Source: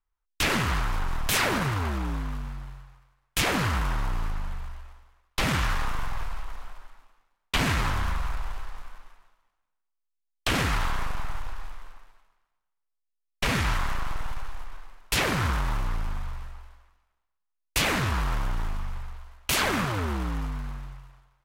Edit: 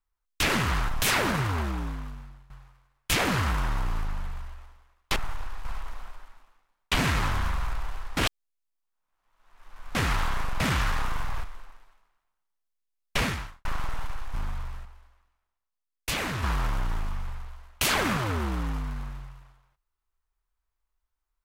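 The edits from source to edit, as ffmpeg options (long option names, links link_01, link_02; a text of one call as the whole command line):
ffmpeg -i in.wav -filter_complex "[0:a]asplit=13[link_01][link_02][link_03][link_04][link_05][link_06][link_07][link_08][link_09][link_10][link_11][link_12][link_13];[link_01]atrim=end=0.892[link_14];[link_02]atrim=start=1.158:end=2.77,asetpts=PTS-STARTPTS,afade=type=out:start_time=0.722:duration=0.89:silence=0.149624[link_15];[link_03]atrim=start=2.77:end=5.432,asetpts=PTS-STARTPTS,afade=type=in:duration=0.004:curve=hsin:silence=0.149624[link_16];[link_04]atrim=start=11.218:end=11.712[link_17];[link_05]atrim=start=6.268:end=8.792[link_18];[link_06]atrim=start=8.788:end=10.572,asetpts=PTS-STARTPTS,areverse[link_19];[link_07]atrim=start=10.568:end=11.222[link_20];[link_08]atrim=start=5.428:end=6.272[link_21];[link_09]atrim=start=11.708:end=13.92,asetpts=PTS-STARTPTS,afade=type=out:start_time=1.772:duration=0.44:curve=qua[link_22];[link_10]atrim=start=13.92:end=14.612,asetpts=PTS-STARTPTS,afade=type=in:duration=0.004:curve=hsin[link_23];[link_11]atrim=start=16.018:end=16.532[link_24];[link_12]atrim=start=16.528:end=18.112,asetpts=PTS-STARTPTS,volume=-5dB[link_25];[link_13]atrim=start=18.108[link_26];[link_15][link_16]concat=n=2:v=0:a=1[link_27];[link_14][link_27]acrossfade=duration=0.004:curve1=hsin:curve2=hsin[link_28];[link_28][link_17]acrossfade=duration=0.004:curve1=hsin:curve2=hsin[link_29];[link_29][link_18]acrossfade=duration=0.004:curve1=hsin:curve2=hsin[link_30];[link_30][link_19]acrossfade=duration=0.004:curve1=hsin:curve2=hsin[link_31];[link_31][link_20]acrossfade=duration=0.004:curve1=hsin:curve2=hsin[link_32];[link_32][link_21]acrossfade=duration=0.004:curve1=hsin:curve2=hsin[link_33];[link_22][link_23]concat=n=2:v=0:a=1[link_34];[link_33][link_34]acrossfade=duration=0.004:curve1=hsin:curve2=hsin[link_35];[link_35][link_24]acrossfade=duration=0.004:curve1=hsin:curve2=hsin[link_36];[link_36][link_25]acrossfade=duration=0.004:curve1=hsin:curve2=hsin[link_37];[link_37][link_26]acrossfade=duration=0.004:curve1=hsin:curve2=hsin" out.wav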